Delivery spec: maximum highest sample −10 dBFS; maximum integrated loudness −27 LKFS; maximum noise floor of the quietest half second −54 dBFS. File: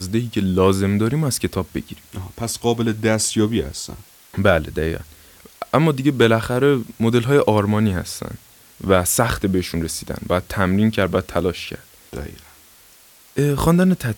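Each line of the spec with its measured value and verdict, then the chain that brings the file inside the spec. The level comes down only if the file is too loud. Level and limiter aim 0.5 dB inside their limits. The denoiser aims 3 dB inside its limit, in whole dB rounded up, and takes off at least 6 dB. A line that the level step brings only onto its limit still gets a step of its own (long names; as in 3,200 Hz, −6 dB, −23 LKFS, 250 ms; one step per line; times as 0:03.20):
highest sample −2.5 dBFS: out of spec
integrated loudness −19.5 LKFS: out of spec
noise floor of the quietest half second −49 dBFS: out of spec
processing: level −8 dB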